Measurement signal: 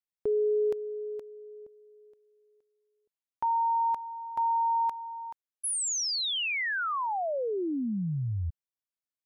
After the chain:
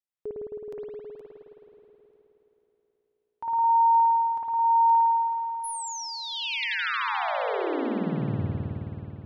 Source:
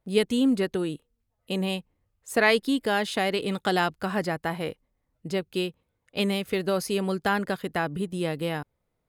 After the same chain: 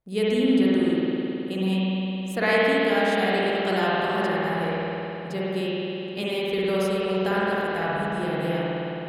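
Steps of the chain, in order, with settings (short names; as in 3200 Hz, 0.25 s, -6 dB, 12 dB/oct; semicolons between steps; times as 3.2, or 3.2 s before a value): spring tank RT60 3.6 s, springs 53 ms, chirp 60 ms, DRR -8 dB; gain -6 dB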